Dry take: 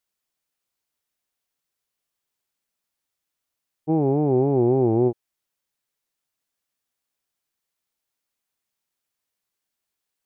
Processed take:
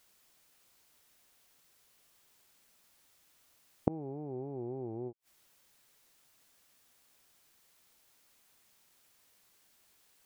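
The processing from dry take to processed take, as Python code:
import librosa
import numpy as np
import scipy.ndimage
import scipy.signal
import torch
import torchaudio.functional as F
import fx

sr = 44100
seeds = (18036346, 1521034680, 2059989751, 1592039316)

y = fx.gate_flip(x, sr, shuts_db=-26.0, range_db=-36)
y = y * librosa.db_to_amplitude(15.0)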